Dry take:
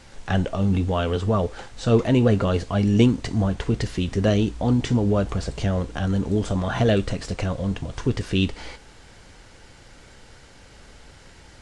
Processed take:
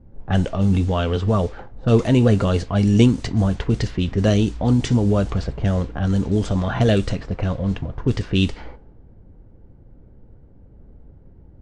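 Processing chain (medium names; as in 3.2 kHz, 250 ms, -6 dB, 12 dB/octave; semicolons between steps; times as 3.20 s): tone controls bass +3 dB, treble +5 dB; level-controlled noise filter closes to 320 Hz, open at -14.5 dBFS; trim +1 dB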